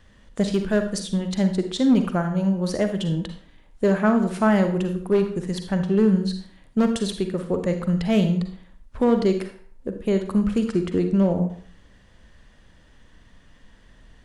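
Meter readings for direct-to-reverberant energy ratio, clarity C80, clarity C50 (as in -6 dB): 6.5 dB, 12.0 dB, 8.0 dB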